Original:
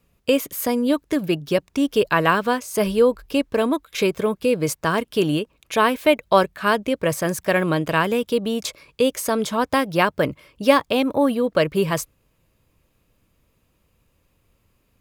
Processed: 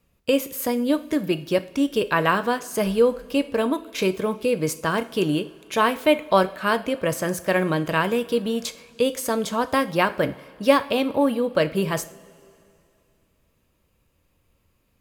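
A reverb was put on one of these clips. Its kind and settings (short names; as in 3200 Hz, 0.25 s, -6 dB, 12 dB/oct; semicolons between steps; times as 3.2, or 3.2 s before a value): two-slope reverb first 0.4 s, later 2.7 s, from -18 dB, DRR 10 dB; gain -2.5 dB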